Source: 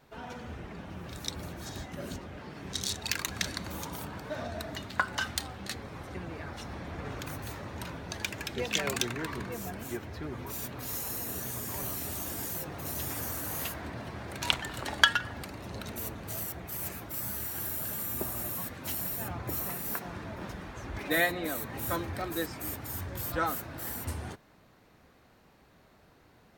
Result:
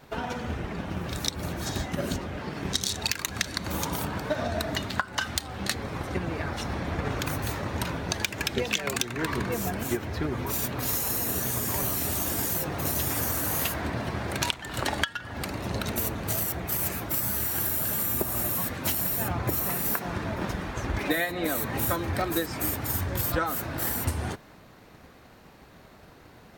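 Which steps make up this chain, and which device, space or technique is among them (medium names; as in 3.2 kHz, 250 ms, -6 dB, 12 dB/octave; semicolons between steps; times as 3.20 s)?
drum-bus smash (transient shaper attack +6 dB, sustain +1 dB; compression 20:1, threshold -31 dBFS, peak gain reduction 23.5 dB; saturation -15 dBFS, distortion -27 dB); trim +8.5 dB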